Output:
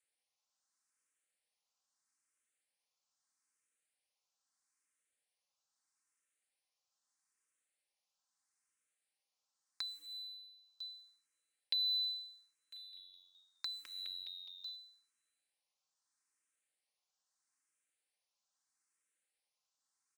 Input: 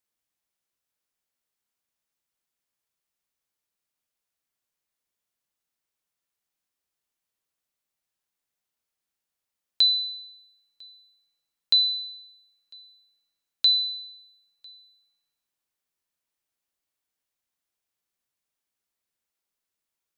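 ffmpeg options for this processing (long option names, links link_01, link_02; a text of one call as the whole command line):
ffmpeg -i in.wav -filter_complex "[0:a]highshelf=frequency=4400:gain=3,acompressor=threshold=-26dB:ratio=10,equalizer=frequency=3400:width_type=o:width=0.86:gain=-6.5,acrossover=split=5100[link_01][link_02];[link_02]acompressor=threshold=-55dB:ratio=4:attack=1:release=60[link_03];[link_01][link_03]amix=inputs=2:normalize=0,asplit=3[link_04][link_05][link_06];[link_04]afade=type=out:start_time=12.75:duration=0.02[link_07];[link_05]asplit=7[link_08][link_09][link_10][link_11][link_12][link_13][link_14];[link_09]adelay=208,afreqshift=-91,volume=-10dB[link_15];[link_10]adelay=416,afreqshift=-182,volume=-15.7dB[link_16];[link_11]adelay=624,afreqshift=-273,volume=-21.4dB[link_17];[link_12]adelay=832,afreqshift=-364,volume=-27dB[link_18];[link_13]adelay=1040,afreqshift=-455,volume=-32.7dB[link_19];[link_14]adelay=1248,afreqshift=-546,volume=-38.4dB[link_20];[link_08][link_15][link_16][link_17][link_18][link_19][link_20]amix=inputs=7:normalize=0,afade=type=in:start_time=12.75:duration=0.02,afade=type=out:start_time=14.75:duration=0.02[link_21];[link_06]afade=type=in:start_time=14.75:duration=0.02[link_22];[link_07][link_21][link_22]amix=inputs=3:normalize=0,alimiter=limit=-22dB:level=0:latency=1:release=355,aresample=22050,aresample=44100,acrusher=bits=6:mode=log:mix=0:aa=0.000001,highpass=frequency=1000:poles=1,aecho=1:1:3.8:0.42,asplit=2[link_23][link_24];[link_24]afreqshift=0.78[link_25];[link_23][link_25]amix=inputs=2:normalize=1,volume=3.5dB" out.wav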